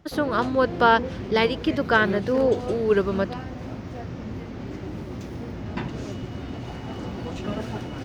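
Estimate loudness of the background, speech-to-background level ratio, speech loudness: -33.0 LUFS, 10.5 dB, -22.5 LUFS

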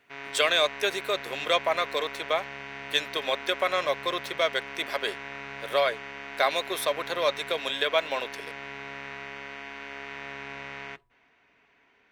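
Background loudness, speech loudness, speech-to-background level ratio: -38.5 LUFS, -27.5 LUFS, 11.0 dB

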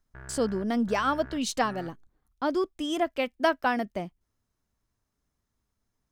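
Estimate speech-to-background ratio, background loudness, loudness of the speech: 19.0 dB, -47.5 LUFS, -28.5 LUFS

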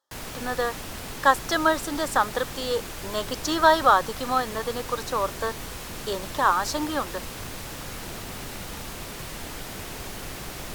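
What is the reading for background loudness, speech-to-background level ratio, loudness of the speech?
-35.5 LUFS, 10.5 dB, -25.0 LUFS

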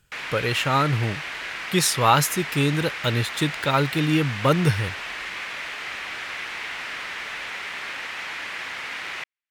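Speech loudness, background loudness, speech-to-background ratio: -22.5 LUFS, -31.0 LUFS, 8.5 dB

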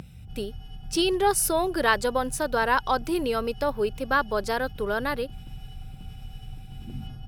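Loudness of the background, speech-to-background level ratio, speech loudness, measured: -43.0 LUFS, 17.0 dB, -26.0 LUFS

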